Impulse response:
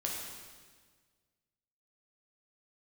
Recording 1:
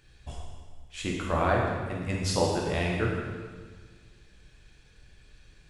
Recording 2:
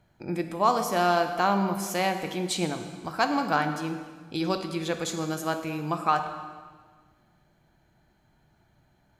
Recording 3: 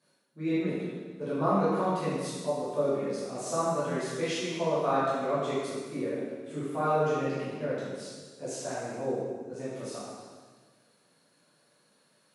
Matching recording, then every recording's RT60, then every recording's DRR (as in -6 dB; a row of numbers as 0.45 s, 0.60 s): 1; 1.6 s, 1.6 s, 1.6 s; -2.5 dB, 6.5 dB, -11.0 dB